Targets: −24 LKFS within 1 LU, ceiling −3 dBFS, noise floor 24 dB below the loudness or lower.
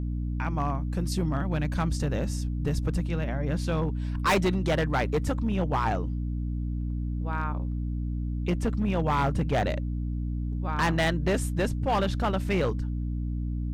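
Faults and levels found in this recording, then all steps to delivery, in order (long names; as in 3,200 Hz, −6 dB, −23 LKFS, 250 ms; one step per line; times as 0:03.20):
share of clipped samples 2.1%; peaks flattened at −19.5 dBFS; mains hum 60 Hz; hum harmonics up to 300 Hz; level of the hum −28 dBFS; integrated loudness −28.5 LKFS; sample peak −19.5 dBFS; target loudness −24.0 LKFS
→ clipped peaks rebuilt −19.5 dBFS
mains-hum notches 60/120/180/240/300 Hz
level +4.5 dB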